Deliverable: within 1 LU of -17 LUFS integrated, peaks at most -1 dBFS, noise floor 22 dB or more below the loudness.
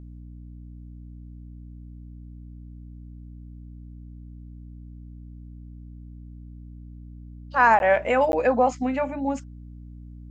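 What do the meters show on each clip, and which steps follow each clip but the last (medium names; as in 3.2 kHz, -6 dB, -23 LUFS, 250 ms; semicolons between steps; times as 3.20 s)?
dropouts 2; longest dropout 11 ms; hum 60 Hz; highest harmonic 300 Hz; hum level -39 dBFS; loudness -22.0 LUFS; peak level -6.5 dBFS; loudness target -17.0 LUFS
-> interpolate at 7.79/8.32 s, 11 ms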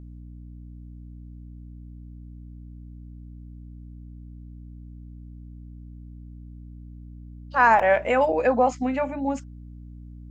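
dropouts 0; hum 60 Hz; highest harmonic 300 Hz; hum level -39 dBFS
-> de-hum 60 Hz, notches 5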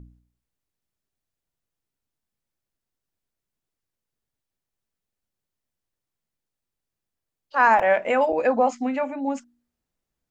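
hum not found; loudness -21.5 LUFS; peak level -7.0 dBFS; loudness target -17.0 LUFS
-> trim +4.5 dB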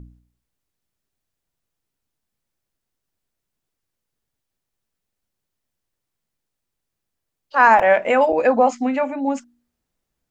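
loudness -17.0 LUFS; peak level -2.0 dBFS; noise floor -81 dBFS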